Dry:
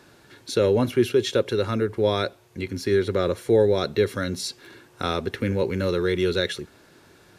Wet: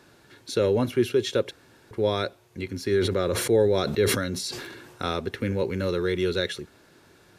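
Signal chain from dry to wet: 1.51–1.91 room tone; 2.92–5.09 sustainer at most 40 dB/s; gain -2.5 dB

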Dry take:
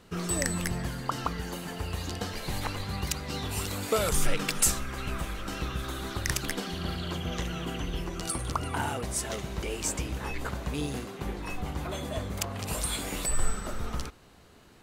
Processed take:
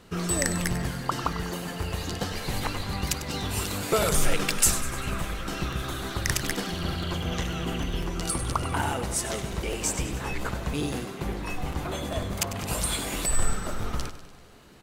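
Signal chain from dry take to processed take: feedback echo 98 ms, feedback 57%, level -12.5 dB; crackling interface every 0.10 s, samples 256, repeat, from 0.62; gain +3 dB

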